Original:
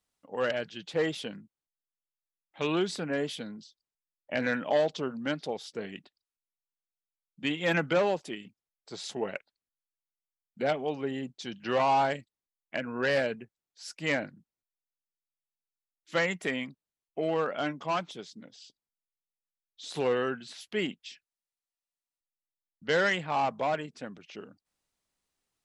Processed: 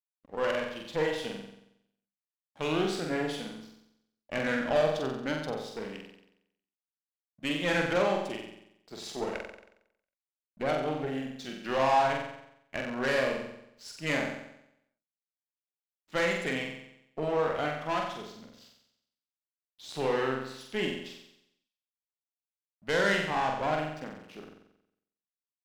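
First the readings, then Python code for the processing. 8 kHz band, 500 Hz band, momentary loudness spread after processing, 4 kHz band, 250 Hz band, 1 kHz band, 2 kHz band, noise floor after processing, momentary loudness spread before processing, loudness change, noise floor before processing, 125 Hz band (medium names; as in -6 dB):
+0.5 dB, 0.0 dB, 19 LU, 0.0 dB, 0.0 dB, +0.5 dB, 0.0 dB, under -85 dBFS, 17 LU, 0.0 dB, under -85 dBFS, +1.0 dB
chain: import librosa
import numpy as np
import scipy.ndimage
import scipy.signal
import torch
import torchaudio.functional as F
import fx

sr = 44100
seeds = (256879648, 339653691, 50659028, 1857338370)

y = fx.backlash(x, sr, play_db=-47.5)
y = fx.cheby_harmonics(y, sr, harmonics=(6,), levels_db=(-19,), full_scale_db=-15.0)
y = fx.room_flutter(y, sr, wall_m=7.8, rt60_s=0.79)
y = y * librosa.db_to_amplitude(-3.0)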